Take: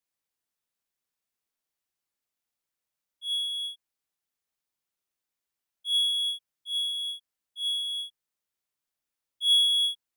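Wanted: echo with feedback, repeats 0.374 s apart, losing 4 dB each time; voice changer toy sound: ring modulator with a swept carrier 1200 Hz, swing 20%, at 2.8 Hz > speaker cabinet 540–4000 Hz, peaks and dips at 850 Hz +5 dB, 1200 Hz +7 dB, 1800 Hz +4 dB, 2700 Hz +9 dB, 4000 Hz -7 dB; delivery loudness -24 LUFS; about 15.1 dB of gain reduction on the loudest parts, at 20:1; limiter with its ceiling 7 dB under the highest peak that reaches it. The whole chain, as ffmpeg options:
-af "acompressor=threshold=-33dB:ratio=20,alimiter=level_in=11dB:limit=-24dB:level=0:latency=1,volume=-11dB,aecho=1:1:374|748|1122|1496|1870|2244|2618|2992|3366:0.631|0.398|0.25|0.158|0.0994|0.0626|0.0394|0.0249|0.0157,aeval=exprs='val(0)*sin(2*PI*1200*n/s+1200*0.2/2.8*sin(2*PI*2.8*n/s))':c=same,highpass=540,equalizer=f=850:t=q:w=4:g=5,equalizer=f=1.2k:t=q:w=4:g=7,equalizer=f=1.8k:t=q:w=4:g=4,equalizer=f=2.7k:t=q:w=4:g=9,equalizer=f=4k:t=q:w=4:g=-7,lowpass=f=4k:w=0.5412,lowpass=f=4k:w=1.3066,volume=14.5dB"

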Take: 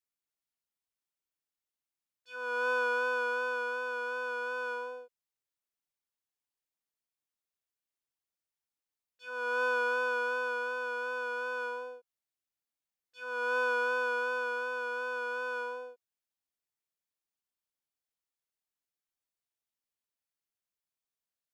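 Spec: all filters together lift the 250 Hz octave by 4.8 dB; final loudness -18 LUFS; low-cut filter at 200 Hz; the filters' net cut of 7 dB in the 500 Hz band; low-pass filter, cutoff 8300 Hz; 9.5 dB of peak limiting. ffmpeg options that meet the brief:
-af "highpass=200,lowpass=8.3k,equalizer=f=250:t=o:g=8,equalizer=f=500:t=o:g=-8.5,volume=21.5dB,alimiter=limit=-11dB:level=0:latency=1"

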